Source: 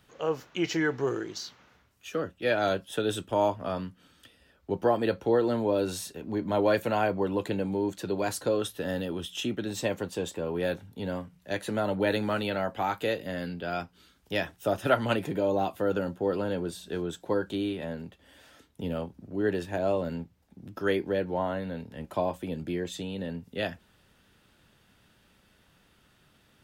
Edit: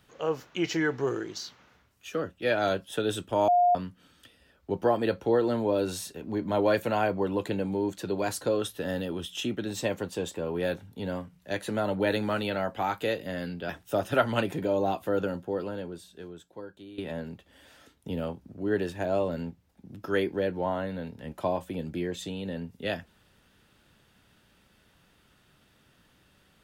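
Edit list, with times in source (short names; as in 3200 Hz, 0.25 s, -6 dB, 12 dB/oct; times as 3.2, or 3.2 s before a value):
3.48–3.75 bleep 710 Hz -18 dBFS
13.69–14.42 cut
15.9–17.71 fade out quadratic, to -16 dB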